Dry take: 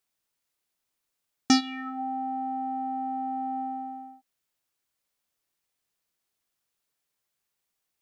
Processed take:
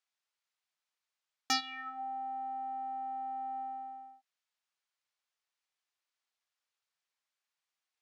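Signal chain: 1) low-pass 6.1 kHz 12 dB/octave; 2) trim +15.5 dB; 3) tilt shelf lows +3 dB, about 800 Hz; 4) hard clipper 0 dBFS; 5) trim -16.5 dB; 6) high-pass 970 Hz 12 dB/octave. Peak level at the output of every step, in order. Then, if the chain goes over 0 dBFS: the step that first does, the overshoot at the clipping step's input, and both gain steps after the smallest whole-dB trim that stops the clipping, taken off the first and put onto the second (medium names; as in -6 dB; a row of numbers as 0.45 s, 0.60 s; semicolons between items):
-9.5 dBFS, +6.0 dBFS, +3.0 dBFS, 0.0 dBFS, -16.5 dBFS, -13.5 dBFS; step 2, 3.0 dB; step 2 +12.5 dB, step 5 -13.5 dB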